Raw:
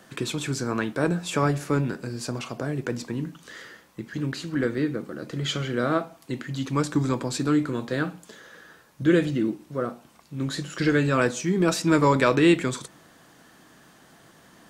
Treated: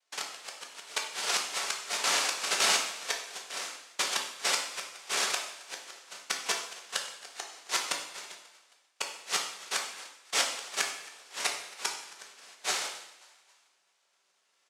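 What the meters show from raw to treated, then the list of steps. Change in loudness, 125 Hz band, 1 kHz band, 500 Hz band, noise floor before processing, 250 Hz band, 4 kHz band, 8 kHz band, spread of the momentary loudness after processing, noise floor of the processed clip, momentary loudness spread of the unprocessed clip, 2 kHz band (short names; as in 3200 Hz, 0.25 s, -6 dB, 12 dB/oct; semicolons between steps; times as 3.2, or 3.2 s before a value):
-6.0 dB, under -35 dB, -6.0 dB, -17.0 dB, -55 dBFS, -30.5 dB, +4.5 dB, +6.0 dB, 15 LU, -73 dBFS, 15 LU, -2.5 dB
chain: median filter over 5 samples; dynamic EQ 680 Hz, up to +6 dB, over -35 dBFS, Q 0.76; gate -43 dBFS, range -27 dB; compressor 8:1, threshold -27 dBFS, peak gain reduction 16 dB; noise vocoder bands 1; flipped gate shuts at -20 dBFS, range -33 dB; HPF 470 Hz 12 dB/oct; high shelf 4800 Hz -4.5 dB; on a send: frequency-shifting echo 0.269 s, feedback 49%, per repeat +75 Hz, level -22 dB; on the sum: two-slope reverb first 0.74 s, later 2 s, from -24 dB, DRR 0.5 dB; AGC gain up to 6 dB; gain +1 dB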